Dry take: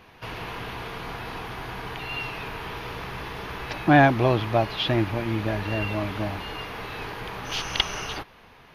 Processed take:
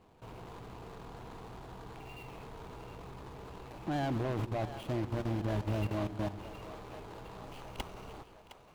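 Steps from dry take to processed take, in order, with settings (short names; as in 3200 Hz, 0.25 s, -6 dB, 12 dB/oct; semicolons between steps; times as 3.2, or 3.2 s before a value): median filter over 25 samples; level quantiser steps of 15 dB; hard clip -26 dBFS, distortion -17 dB; on a send: split-band echo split 440 Hz, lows 0.138 s, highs 0.712 s, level -12 dB; on the sum: gain -2.5 dB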